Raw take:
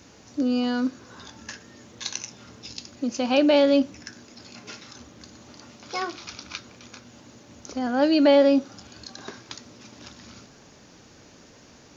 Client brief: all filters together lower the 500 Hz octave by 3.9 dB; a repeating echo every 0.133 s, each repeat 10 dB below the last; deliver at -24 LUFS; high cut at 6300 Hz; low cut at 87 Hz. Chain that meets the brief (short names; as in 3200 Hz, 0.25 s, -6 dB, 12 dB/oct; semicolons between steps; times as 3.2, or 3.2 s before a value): HPF 87 Hz; LPF 6300 Hz; bell 500 Hz -4.5 dB; feedback echo 0.133 s, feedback 32%, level -10 dB; gain +1 dB